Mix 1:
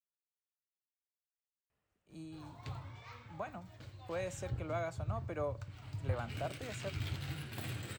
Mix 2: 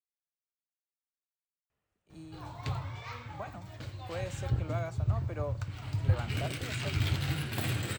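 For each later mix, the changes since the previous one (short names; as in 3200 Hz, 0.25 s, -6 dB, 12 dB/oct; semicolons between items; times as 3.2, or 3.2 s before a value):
background +9.5 dB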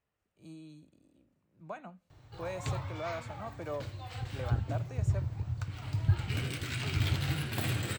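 speech: entry -1.70 s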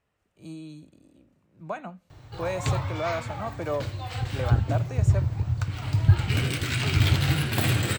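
speech +9.0 dB; background +9.0 dB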